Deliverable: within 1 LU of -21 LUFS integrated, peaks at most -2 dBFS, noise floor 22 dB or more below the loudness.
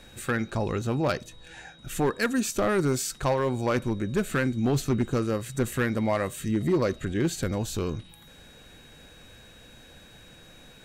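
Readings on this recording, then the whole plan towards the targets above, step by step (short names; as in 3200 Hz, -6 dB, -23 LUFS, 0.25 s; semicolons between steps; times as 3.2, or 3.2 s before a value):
clipped 1.1%; flat tops at -18.0 dBFS; steady tone 3800 Hz; tone level -54 dBFS; loudness -27.5 LUFS; peak -18.0 dBFS; loudness target -21.0 LUFS
-> clip repair -18 dBFS; notch 3800 Hz, Q 30; gain +6.5 dB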